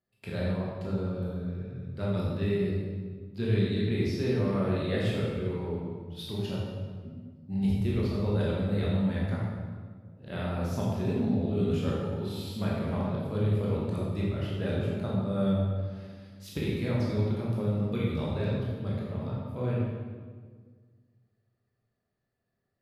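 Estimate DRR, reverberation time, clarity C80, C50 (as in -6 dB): -6.0 dB, 1.6 s, 1.0 dB, -1.5 dB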